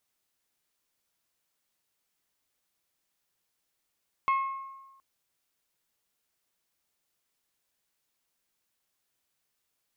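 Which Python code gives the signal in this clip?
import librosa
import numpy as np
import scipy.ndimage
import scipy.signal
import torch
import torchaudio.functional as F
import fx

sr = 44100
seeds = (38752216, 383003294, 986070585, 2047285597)

y = fx.strike_glass(sr, length_s=0.72, level_db=-21.0, body='bell', hz=1080.0, decay_s=1.19, tilt_db=10, modes=5)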